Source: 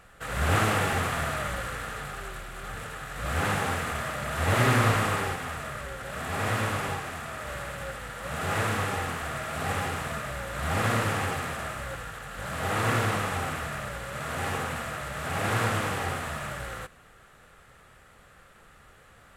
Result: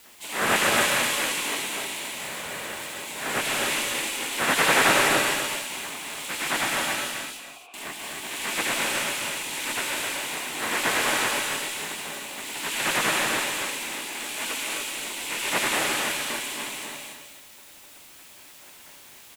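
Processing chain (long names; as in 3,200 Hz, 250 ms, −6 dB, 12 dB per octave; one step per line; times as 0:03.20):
gate on every frequency bin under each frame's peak −15 dB weak
low-shelf EQ 91 Hz −11.5 dB
frequency shifter −33 Hz
in parallel at −10.5 dB: bit-depth reduction 8 bits, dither triangular
0:07.11–0:07.74: on the sum: formant filter a
single-tap delay 254 ms −7 dB
reverb whose tail is shaped and stops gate 320 ms rising, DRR 1.5 dB
level +5.5 dB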